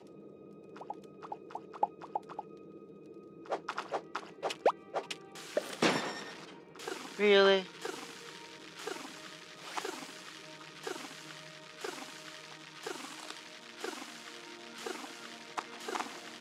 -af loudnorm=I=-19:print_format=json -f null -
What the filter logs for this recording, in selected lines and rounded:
"input_i" : "-37.6",
"input_tp" : "-12.0",
"input_lra" : "11.7",
"input_thresh" : "-48.1",